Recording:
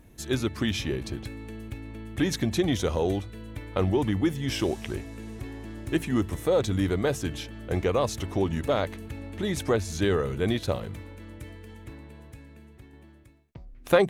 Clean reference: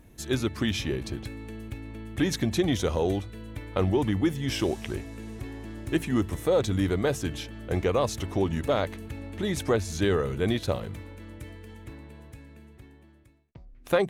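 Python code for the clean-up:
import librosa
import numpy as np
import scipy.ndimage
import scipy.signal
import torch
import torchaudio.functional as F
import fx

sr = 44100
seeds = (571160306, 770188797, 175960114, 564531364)

y = fx.fix_level(x, sr, at_s=12.93, step_db=-3.5)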